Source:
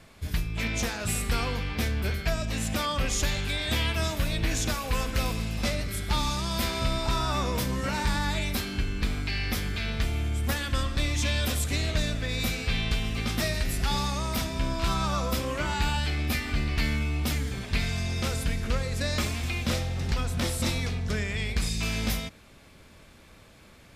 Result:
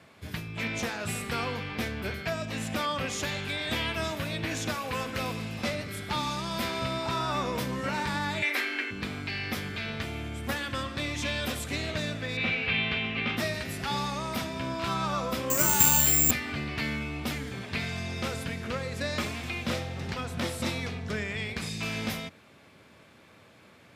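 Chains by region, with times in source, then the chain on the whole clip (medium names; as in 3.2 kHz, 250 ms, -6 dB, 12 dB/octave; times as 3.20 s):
8.42–8.91 s: Chebyshev high-pass 250 Hz, order 10 + peaking EQ 2 kHz +13.5 dB 0.82 oct
12.37–13.37 s: resonant low-pass 2.7 kHz, resonance Q 2.5 + doubling 41 ms -11 dB
15.50–16.31 s: bass shelf 460 Hz +5 dB + careless resampling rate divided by 6×, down none, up zero stuff
whole clip: high-pass 94 Hz 24 dB/octave; tone controls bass -3 dB, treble -7 dB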